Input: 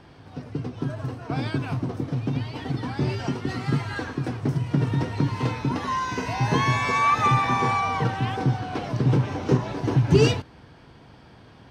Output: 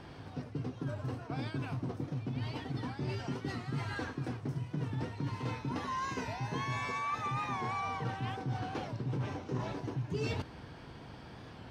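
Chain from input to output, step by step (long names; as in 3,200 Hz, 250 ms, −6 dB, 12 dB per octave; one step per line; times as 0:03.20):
reversed playback
downward compressor 5 to 1, threshold −35 dBFS, peak gain reduction 20 dB
reversed playback
wow of a warped record 45 rpm, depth 100 cents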